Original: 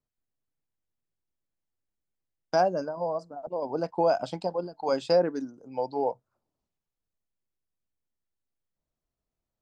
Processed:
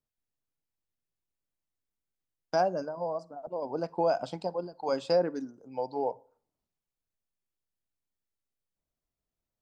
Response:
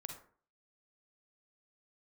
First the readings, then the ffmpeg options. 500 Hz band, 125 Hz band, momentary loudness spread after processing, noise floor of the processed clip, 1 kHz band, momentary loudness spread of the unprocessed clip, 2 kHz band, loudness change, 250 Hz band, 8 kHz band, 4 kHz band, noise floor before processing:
-3.0 dB, -3.0 dB, 10 LU, under -85 dBFS, -3.0 dB, 11 LU, -3.0 dB, -3.0 dB, -3.0 dB, n/a, -3.0 dB, under -85 dBFS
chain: -filter_complex "[0:a]asplit=2[a][b];[1:a]atrim=start_sample=2205[c];[b][c]afir=irnorm=-1:irlink=0,volume=-14dB[d];[a][d]amix=inputs=2:normalize=0,volume=-4dB"

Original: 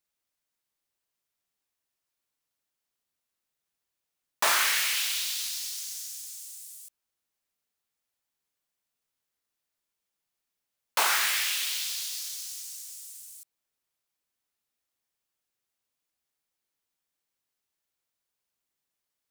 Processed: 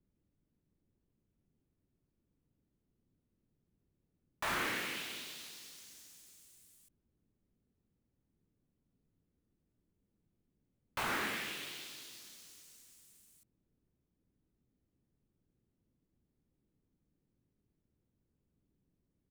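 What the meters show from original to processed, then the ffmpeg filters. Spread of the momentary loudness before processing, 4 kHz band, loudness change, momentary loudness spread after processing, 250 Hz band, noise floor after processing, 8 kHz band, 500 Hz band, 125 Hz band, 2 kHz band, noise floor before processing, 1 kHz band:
19 LU, -14.5 dB, -12.0 dB, 21 LU, +9.5 dB, -83 dBFS, -19.0 dB, -5.0 dB, n/a, -9.5 dB, -85 dBFS, -9.5 dB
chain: -filter_complex "[0:a]acrossover=split=360|1500[a][b][c];[a]aeval=exprs='0.0106*sin(PI/2*7.94*val(0)/0.0106)':c=same[d];[b]alimiter=level_in=3.5dB:limit=-24dB:level=0:latency=1,volume=-3.5dB[e];[d][e][c]amix=inputs=3:normalize=0,firequalizer=gain_entry='entry(170,0);entry(650,-7);entry(5100,-21)':delay=0.05:min_phase=1,volume=2dB"

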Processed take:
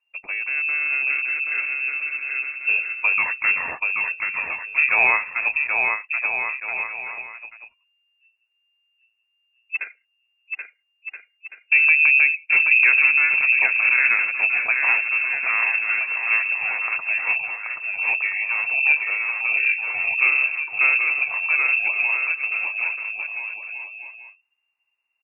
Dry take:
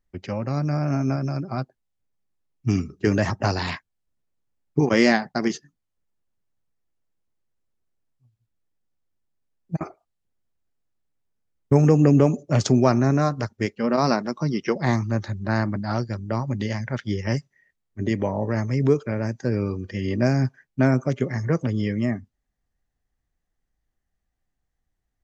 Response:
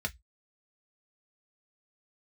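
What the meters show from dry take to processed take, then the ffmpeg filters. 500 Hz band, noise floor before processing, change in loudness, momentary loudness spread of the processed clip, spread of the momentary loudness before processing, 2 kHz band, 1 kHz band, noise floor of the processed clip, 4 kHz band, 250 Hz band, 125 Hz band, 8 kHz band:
-17.0 dB, -79 dBFS, +4.5 dB, 15 LU, 12 LU, +17.5 dB, -1.5 dB, -72 dBFS, under -15 dB, under -30 dB, under -35 dB, n/a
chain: -af "lowpass=f=2.4k:t=q:w=0.5098,lowpass=f=2.4k:t=q:w=0.6013,lowpass=f=2.4k:t=q:w=0.9,lowpass=f=2.4k:t=q:w=2.563,afreqshift=-2800,aecho=1:1:780|1326|1708|1976|2163:0.631|0.398|0.251|0.158|0.1"

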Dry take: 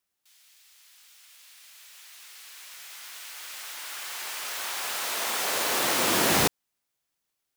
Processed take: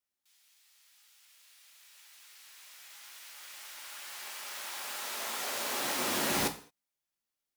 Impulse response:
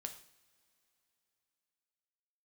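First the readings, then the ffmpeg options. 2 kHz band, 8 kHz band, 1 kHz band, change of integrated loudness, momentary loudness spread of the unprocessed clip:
-8.0 dB, -8.0 dB, -7.5 dB, -8.0 dB, 21 LU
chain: -filter_complex "[1:a]atrim=start_sample=2205,afade=t=out:st=0.37:d=0.01,atrim=end_sample=16758,asetrate=61740,aresample=44100[a];[0:a][a]afir=irnorm=-1:irlink=0,volume=-1.5dB"

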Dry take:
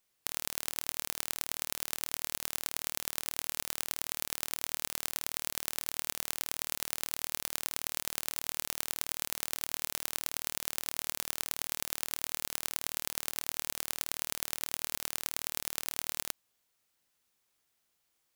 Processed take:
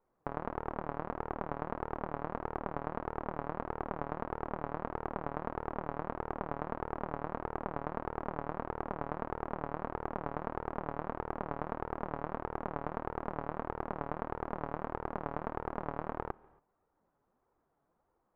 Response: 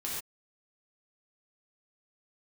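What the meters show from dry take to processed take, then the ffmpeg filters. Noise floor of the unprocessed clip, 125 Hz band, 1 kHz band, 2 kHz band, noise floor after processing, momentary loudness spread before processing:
-78 dBFS, +11.0 dB, +9.5 dB, -5.0 dB, -79 dBFS, 1 LU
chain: -filter_complex "[0:a]lowpass=f=1.1k:w=0.5412,lowpass=f=1.1k:w=1.3066,flanger=delay=2.1:depth=5.1:regen=38:speed=1.6:shape=sinusoidal,asplit=2[a][b];[1:a]atrim=start_sample=2205,adelay=141[c];[b][c]afir=irnorm=-1:irlink=0,volume=-26dB[d];[a][d]amix=inputs=2:normalize=0,volume=15.5dB"

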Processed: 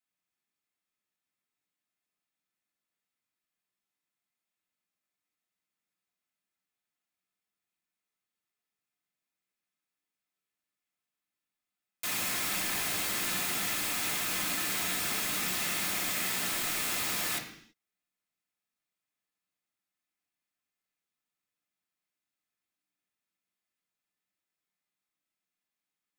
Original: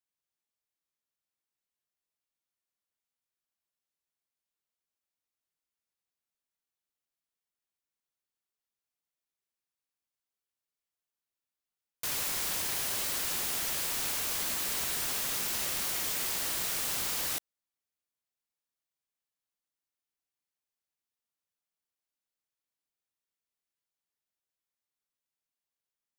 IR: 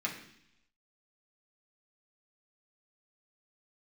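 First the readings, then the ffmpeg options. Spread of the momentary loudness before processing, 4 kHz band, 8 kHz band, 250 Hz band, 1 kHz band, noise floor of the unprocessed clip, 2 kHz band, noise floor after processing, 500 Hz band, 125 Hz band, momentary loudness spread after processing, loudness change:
1 LU, +1.5 dB, 0.0 dB, +6.0 dB, +3.5 dB, under -85 dBFS, +5.5 dB, under -85 dBFS, +1.5 dB, +3.0 dB, 2 LU, +0.5 dB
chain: -filter_complex "[1:a]atrim=start_sample=2205,afade=t=out:st=0.4:d=0.01,atrim=end_sample=18081[a];[0:a][a]afir=irnorm=-1:irlink=0"

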